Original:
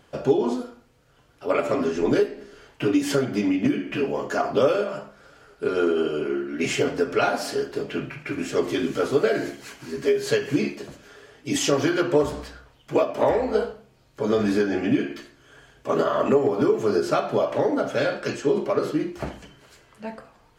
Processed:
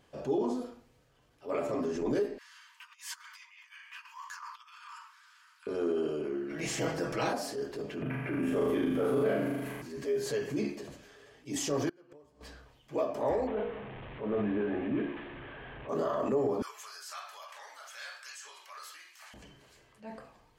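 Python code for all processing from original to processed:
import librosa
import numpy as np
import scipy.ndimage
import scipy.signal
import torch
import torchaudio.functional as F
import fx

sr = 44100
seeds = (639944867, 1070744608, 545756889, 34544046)

y = fx.chain(x, sr, fx.over_compress(threshold_db=-26.0, ratio=-0.5),
    fx.brickwall_highpass(low_hz=900.0), at=(2.38, 5.67))
y = fx.spec_clip(y, sr, under_db=14, at=(6.49, 7.32), fade=0.02)
y = fx.comb(y, sr, ms=6.2, depth=0.68, at=(6.49, 7.32), fade=0.02)
y = fx.chain(y, sr, fx.band_shelf(hz=5600.0, db=-14.0, octaves=1.2),
    fx.room_flutter(wall_m=6.6, rt60_s=0.86),
    fx.band_squash(depth_pct=70), at=(8.02, 9.82))
y = fx.chain(y, sr, fx.peak_eq(hz=3700.0, db=-6.5, octaves=0.24),
    fx.gate_flip(shuts_db=-19.0, range_db=-32), at=(11.89, 12.41))
y = fx.chain(y, sr, fx.delta_mod(bps=16000, step_db=-29.5),
    fx.hum_notches(base_hz=60, count=8), at=(13.47, 15.89))
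y = fx.chain(y, sr, fx.highpass(hz=1200.0, slope=24),
    fx.high_shelf(hz=5600.0, db=8.5), at=(16.62, 19.34))
y = fx.notch(y, sr, hz=1400.0, q=9.7)
y = fx.dynamic_eq(y, sr, hz=2800.0, q=0.93, threshold_db=-44.0, ratio=4.0, max_db=-7)
y = fx.transient(y, sr, attack_db=-6, sustain_db=4)
y = y * librosa.db_to_amplitude(-8.0)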